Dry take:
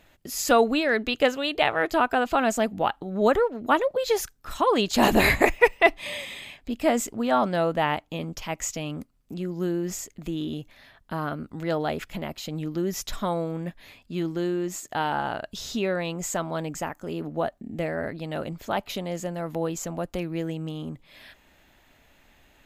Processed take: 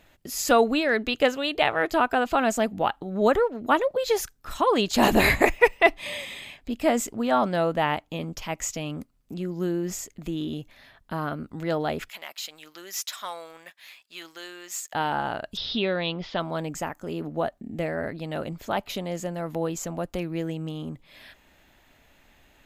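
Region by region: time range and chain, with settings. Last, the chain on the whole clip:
12.09–14.93 s: Bessel high-pass 1.6 kHz + waveshaping leveller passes 1
15.57–16.40 s: steep low-pass 5.2 kHz 72 dB/octave + peaking EQ 3.4 kHz +12 dB 0.45 oct
whole clip: none

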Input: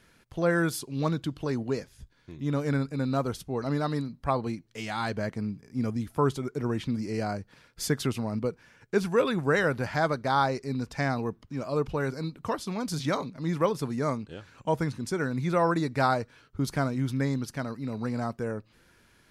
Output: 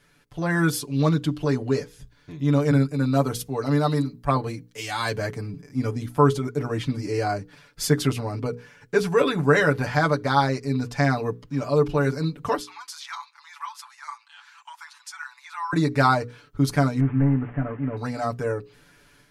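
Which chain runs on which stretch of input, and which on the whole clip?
2.71–5.54 s: treble shelf 8.1 kHz +9.5 dB + three bands expanded up and down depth 40%
12.61–15.73 s: treble shelf 12 kHz -8 dB + compression 1.5:1, threshold -45 dBFS + steep high-pass 860 Hz 72 dB/octave
17.00–17.97 s: one-bit delta coder 16 kbps, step -44.5 dBFS + low-pass 2.1 kHz 24 dB/octave
whole clip: hum notches 60/120/180/240/300/360/420/480 Hz; comb 6.9 ms, depth 92%; level rider gain up to 6 dB; trim -2.5 dB

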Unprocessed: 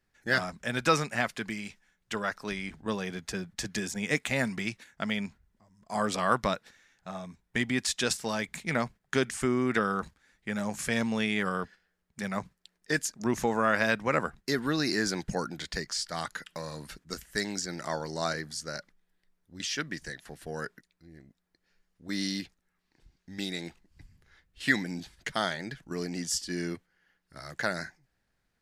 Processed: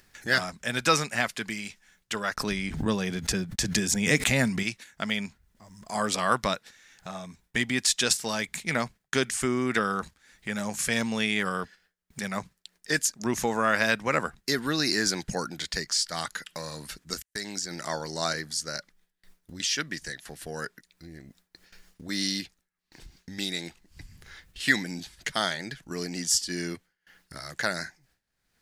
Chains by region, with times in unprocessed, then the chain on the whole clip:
2.34–4.63 s: gate -59 dBFS, range -50 dB + bass shelf 330 Hz +8.5 dB + swell ahead of each attack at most 74 dB/s
17.22–17.71 s: gate -43 dBFS, range -41 dB + compression 2.5:1, threshold -35 dBFS
whole clip: gate with hold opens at -60 dBFS; treble shelf 2.4 kHz +8 dB; upward compressor, threshold -36 dBFS

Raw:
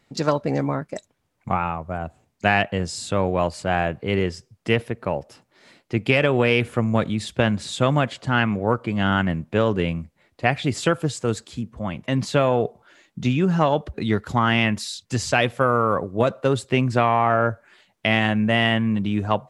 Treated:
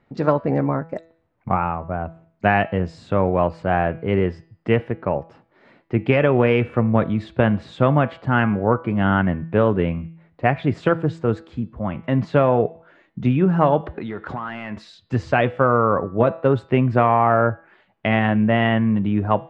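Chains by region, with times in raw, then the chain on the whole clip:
13.83–14.77 s: overdrive pedal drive 16 dB, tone 1 kHz, clips at -4 dBFS + treble shelf 2.7 kHz +11 dB + compression 10:1, threshold -27 dBFS
whole clip: low-pass 1.7 kHz 12 dB/octave; de-hum 164.3 Hz, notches 30; trim +3 dB

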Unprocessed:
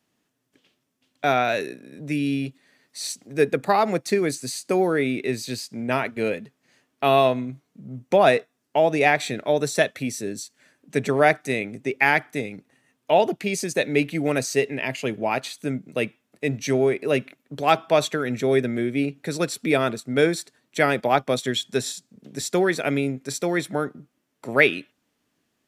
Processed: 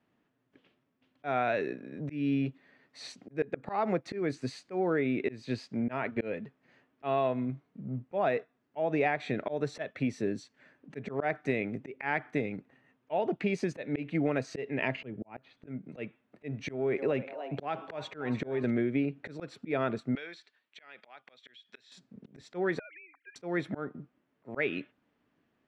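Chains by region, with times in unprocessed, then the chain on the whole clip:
14.95–15.67 s: low-pass 3.6 kHz + bass shelf 410 Hz +10 dB + slow attack 634 ms
16.68–18.71 s: compression, threshold -20 dBFS + frequency-shifting echo 295 ms, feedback 49%, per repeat +140 Hz, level -15 dB
20.15–21.92 s: band-pass filter 3.4 kHz, Q 1.1 + compression 3:1, threshold -39 dBFS
22.79–23.36 s: formants replaced by sine waves + inverse Chebyshev high-pass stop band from 250 Hz, stop band 60 dB + compression 10:1, threshold -44 dBFS
whole clip: low-pass 2.2 kHz 12 dB/octave; slow attack 271 ms; compression 6:1, threshold -25 dBFS

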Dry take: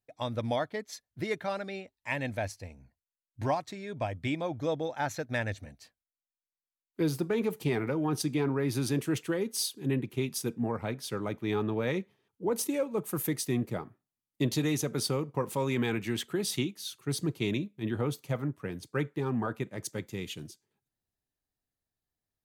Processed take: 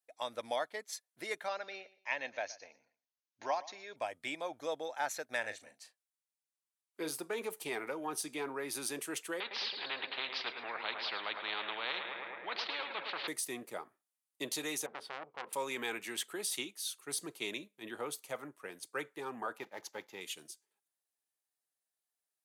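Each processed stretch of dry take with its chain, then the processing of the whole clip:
1.48–3.96 s: brick-wall FIR low-pass 6.8 kHz + bass shelf 170 Hz -10 dB + feedback delay 119 ms, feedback 27%, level -19 dB
5.40–7.11 s: peaking EQ 14 kHz -5 dB 0.66 oct + doubling 38 ms -10.5 dB
9.40–13.28 s: steep low-pass 4.2 kHz 72 dB/octave + filtered feedback delay 108 ms, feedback 73%, low-pass 3.3 kHz, level -15 dB + spectrum-flattening compressor 4:1
14.86–15.53 s: distance through air 420 m + transformer saturation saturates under 1.7 kHz
19.58–20.21 s: block-companded coder 5-bit + boxcar filter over 5 samples + peaking EQ 850 Hz +10 dB 0.31 oct
whole clip: high-pass 570 Hz 12 dB/octave; de-esser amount 65%; peaking EQ 9.5 kHz +8.5 dB 0.83 oct; trim -2.5 dB

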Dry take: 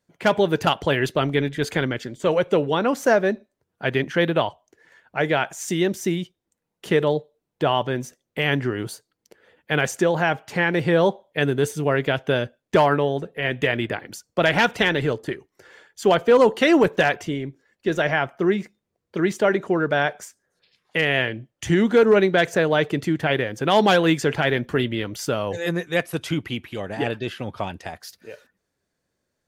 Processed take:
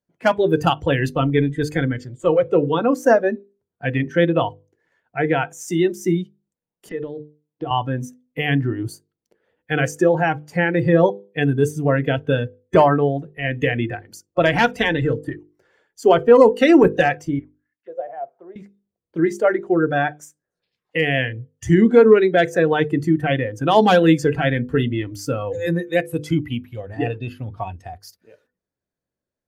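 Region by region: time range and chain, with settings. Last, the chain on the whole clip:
6.89–7.71 s: Chebyshev band-pass 100–5400 Hz, order 4 + compression 8:1, threshold -23 dBFS
17.39–18.56 s: bass shelf 250 Hz -6.5 dB + auto-wah 590–2000 Hz, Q 3, down, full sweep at -22.5 dBFS
whole clip: spectral noise reduction 14 dB; tilt shelf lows +4.5 dB, about 1.2 kHz; hum notches 50/100/150/200/250/300/350/400/450/500 Hz; trim +2 dB

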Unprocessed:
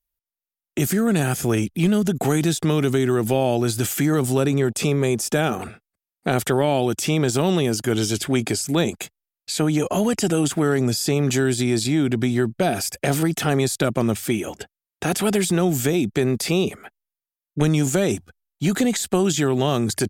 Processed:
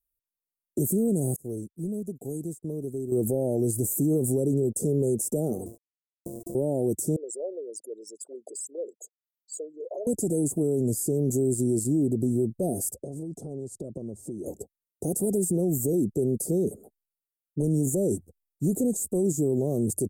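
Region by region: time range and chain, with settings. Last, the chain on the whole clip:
1.36–3.12 s: expander -15 dBFS + compression 2.5:1, threshold -28 dBFS
5.66–6.55 s: sorted samples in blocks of 128 samples + compression 10:1, threshold -28 dBFS + small samples zeroed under -46 dBFS
7.16–10.07 s: resonances exaggerated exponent 3 + high-pass 620 Hz 24 dB/octave + de-esser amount 50%
12.94–14.46 s: low-pass 5.1 kHz + compression 8:1, threshold -28 dBFS
whole clip: elliptic band-stop 510–8300 Hz, stop band 80 dB; bass shelf 240 Hz -4.5 dB; peak limiter -17 dBFS

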